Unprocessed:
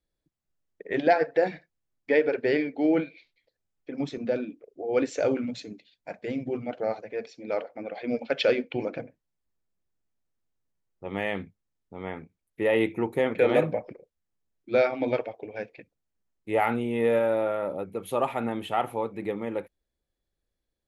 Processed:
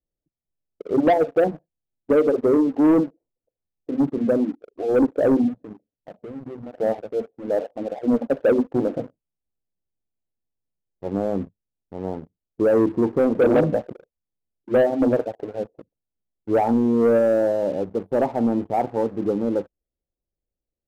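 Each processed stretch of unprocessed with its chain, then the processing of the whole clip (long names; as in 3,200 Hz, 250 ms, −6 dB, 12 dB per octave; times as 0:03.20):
0:05.48–0:06.74: parametric band 940 Hz −5 dB 1.3 octaves + downward compressor, threshold −39 dBFS
whole clip: inverse Chebyshev low-pass filter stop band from 2,100 Hz, stop band 50 dB; dynamic equaliser 260 Hz, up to +6 dB, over −40 dBFS, Q 2.2; leveller curve on the samples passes 2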